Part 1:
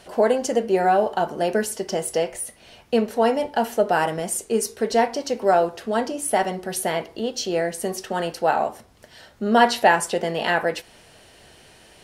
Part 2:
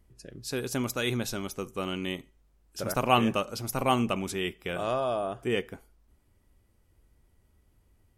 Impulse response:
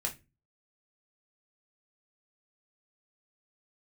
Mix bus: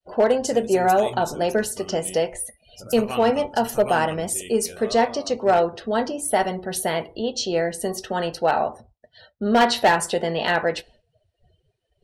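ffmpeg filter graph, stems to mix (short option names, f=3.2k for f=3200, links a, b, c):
-filter_complex "[0:a]agate=range=-33dB:threshold=-45dB:ratio=3:detection=peak,equalizer=f=3.9k:t=o:w=0.45:g=4.5,volume=-1dB,asplit=2[a][b];[b]volume=-17dB[c];[1:a]flanger=delay=9.3:depth=7:regen=51:speed=1.2:shape=sinusoidal,crystalizer=i=1:c=0,adynamicequalizer=threshold=0.00251:dfrequency=7200:dqfactor=0.77:tfrequency=7200:tqfactor=0.77:attack=5:release=100:ratio=0.375:range=4:mode=boostabove:tftype=bell,volume=-5.5dB[d];[2:a]atrim=start_sample=2205[e];[c][e]afir=irnorm=-1:irlink=0[f];[a][d][f]amix=inputs=3:normalize=0,afftdn=nr=31:nf=-44,lowshelf=f=97:g=8.5,volume=10.5dB,asoftclip=hard,volume=-10.5dB"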